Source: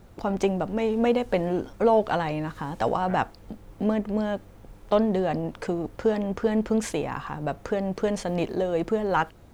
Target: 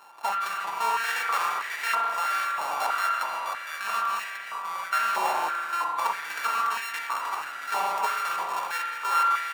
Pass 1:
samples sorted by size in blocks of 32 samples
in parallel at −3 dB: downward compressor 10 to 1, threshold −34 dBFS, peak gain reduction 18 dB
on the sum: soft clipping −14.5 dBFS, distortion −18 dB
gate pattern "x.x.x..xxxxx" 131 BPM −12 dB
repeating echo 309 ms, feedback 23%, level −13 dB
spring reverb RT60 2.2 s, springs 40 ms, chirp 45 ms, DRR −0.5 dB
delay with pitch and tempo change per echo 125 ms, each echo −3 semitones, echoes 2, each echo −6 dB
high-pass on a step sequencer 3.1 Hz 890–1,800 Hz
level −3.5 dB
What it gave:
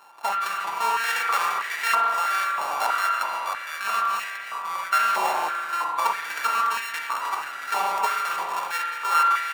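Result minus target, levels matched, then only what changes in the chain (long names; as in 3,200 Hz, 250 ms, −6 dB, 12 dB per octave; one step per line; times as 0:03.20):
soft clipping: distortion −8 dB
change: soft clipping −22 dBFS, distortion −10 dB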